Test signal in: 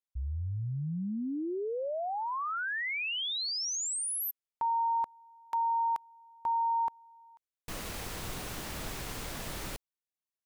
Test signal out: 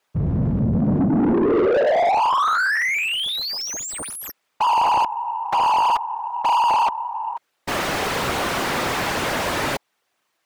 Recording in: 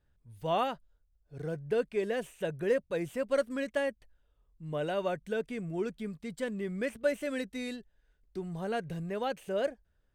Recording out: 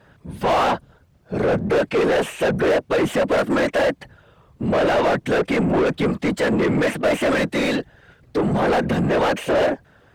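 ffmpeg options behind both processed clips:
-filter_complex "[0:a]afftfilt=real='hypot(re,im)*cos(2*PI*random(0))':imag='hypot(re,im)*sin(2*PI*random(1))':win_size=512:overlap=0.75,asplit=2[s0][s1];[s1]highpass=f=720:p=1,volume=70.8,asoftclip=type=tanh:threshold=0.119[s2];[s0][s2]amix=inputs=2:normalize=0,lowpass=f=1300:p=1,volume=0.501,volume=2.82"

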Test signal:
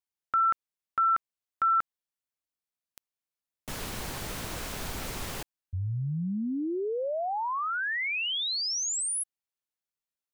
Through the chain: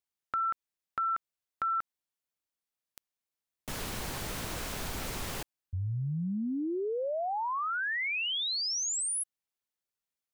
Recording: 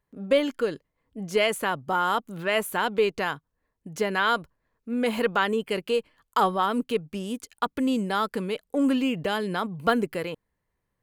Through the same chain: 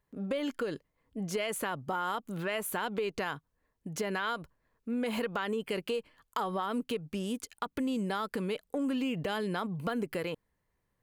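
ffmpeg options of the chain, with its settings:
-af "acompressor=threshold=0.0398:ratio=12:attack=5:release=102:knee=6:detection=rms"

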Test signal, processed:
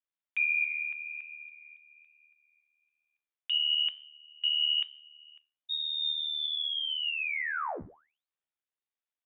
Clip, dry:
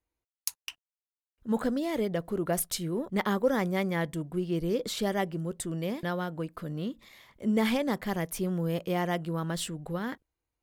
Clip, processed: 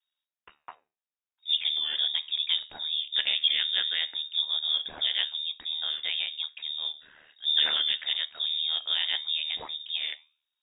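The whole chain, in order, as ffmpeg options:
-af "flanger=delay=9.6:depth=5:regen=81:speed=1.1:shape=sinusoidal,aeval=exprs='val(0)*sin(2*PI*38*n/s)':c=same,lowpass=f=3200:t=q:w=0.5098,lowpass=f=3200:t=q:w=0.6013,lowpass=f=3200:t=q:w=0.9,lowpass=f=3200:t=q:w=2.563,afreqshift=-3800,volume=2.51"

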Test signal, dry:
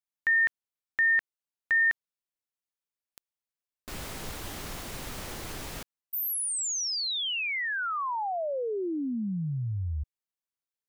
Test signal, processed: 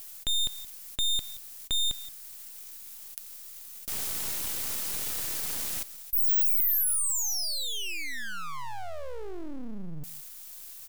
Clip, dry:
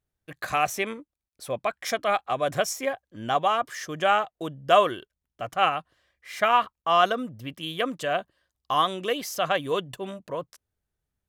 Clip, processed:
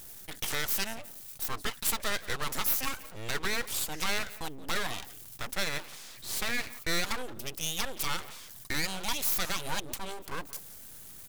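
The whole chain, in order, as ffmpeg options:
-filter_complex "[0:a]asplit=2[s0][s1];[s1]acompressor=threshold=0.0178:ratio=6:attack=3.2:release=41,volume=1.26[s2];[s0][s2]amix=inputs=2:normalize=0,alimiter=limit=0.2:level=0:latency=1:release=124,areverse,acompressor=mode=upward:threshold=0.0316:ratio=4:attack=0.12:release=20:knee=2.83:detection=peak,areverse,asplit=2[s3][s4];[s4]adelay=174.9,volume=0.141,highshelf=f=4000:g=-3.94[s5];[s3][s5]amix=inputs=2:normalize=0,aeval=exprs='abs(val(0))':c=same,crystalizer=i=3:c=0,volume=0.447"

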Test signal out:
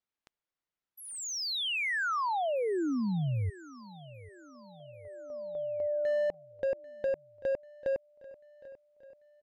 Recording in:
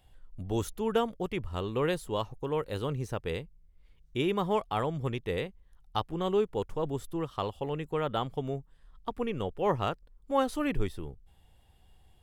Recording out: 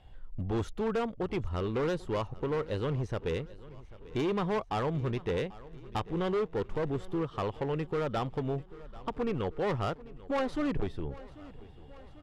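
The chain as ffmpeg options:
-filter_complex "[0:a]aemphasis=mode=reproduction:type=50kf,asplit=2[s0][s1];[s1]acompressor=threshold=0.01:ratio=16,volume=1.26[s2];[s0][s2]amix=inputs=2:normalize=0,asoftclip=type=hard:threshold=0.0473,adynamicsmooth=sensitivity=5:basefreq=7500,aecho=1:1:791|1582|2373|3164|3955:0.106|0.0614|0.0356|0.0207|0.012"

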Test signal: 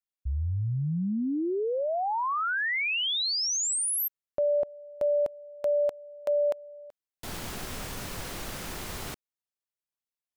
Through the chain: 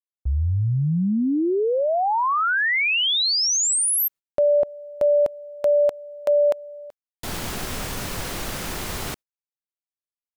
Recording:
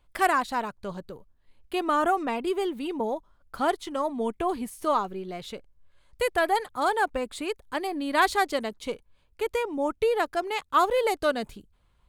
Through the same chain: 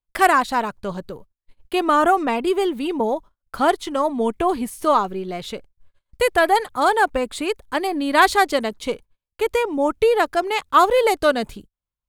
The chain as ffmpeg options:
-af "agate=range=0.0224:threshold=0.00316:ratio=3:release=85:detection=rms,volume=2.37"

